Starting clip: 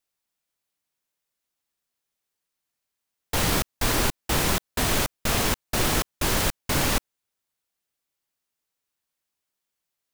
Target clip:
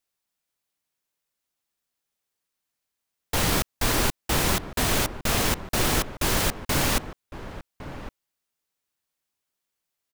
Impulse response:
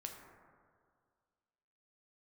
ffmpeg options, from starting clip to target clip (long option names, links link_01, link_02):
-filter_complex "[0:a]asplit=2[link_01][link_02];[link_02]adelay=1108,volume=-12dB,highshelf=frequency=4000:gain=-24.9[link_03];[link_01][link_03]amix=inputs=2:normalize=0"